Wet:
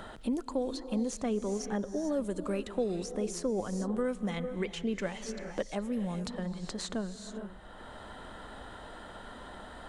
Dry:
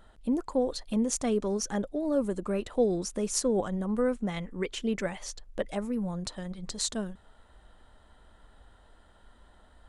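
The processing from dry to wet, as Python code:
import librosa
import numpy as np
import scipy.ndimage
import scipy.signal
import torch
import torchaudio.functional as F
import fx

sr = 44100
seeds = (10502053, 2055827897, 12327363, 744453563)

y = fx.high_shelf(x, sr, hz=7600.0, db=-6.0)
y = fx.rev_gated(y, sr, seeds[0], gate_ms=460, shape='rising', drr_db=11.5)
y = fx.band_squash(y, sr, depth_pct=70)
y = y * 10.0 ** (-3.5 / 20.0)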